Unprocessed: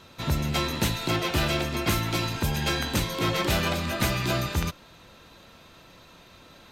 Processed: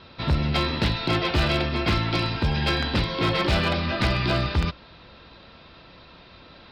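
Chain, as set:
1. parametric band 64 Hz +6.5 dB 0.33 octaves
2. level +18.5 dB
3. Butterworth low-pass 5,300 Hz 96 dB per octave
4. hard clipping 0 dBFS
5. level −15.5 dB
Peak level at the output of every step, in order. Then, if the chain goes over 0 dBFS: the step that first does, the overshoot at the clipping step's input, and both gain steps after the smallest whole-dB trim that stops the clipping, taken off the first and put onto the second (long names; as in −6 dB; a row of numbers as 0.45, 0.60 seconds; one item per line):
−10.0, +8.5, +8.0, 0.0, −15.5 dBFS
step 2, 8.0 dB
step 2 +10.5 dB, step 5 −7.5 dB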